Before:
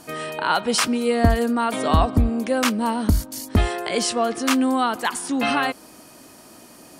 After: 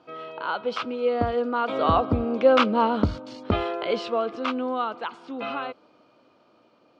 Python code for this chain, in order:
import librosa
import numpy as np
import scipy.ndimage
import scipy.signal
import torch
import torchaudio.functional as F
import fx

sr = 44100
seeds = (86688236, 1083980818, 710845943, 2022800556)

y = fx.doppler_pass(x, sr, speed_mps=9, closest_m=6.4, pass_at_s=2.77)
y = fx.cabinet(y, sr, low_hz=120.0, low_slope=12, high_hz=3600.0, hz=(170.0, 240.0, 510.0, 1300.0, 1800.0), db=(-5, -4, 6, 6, -10))
y = F.gain(torch.from_numpy(y), 2.0).numpy()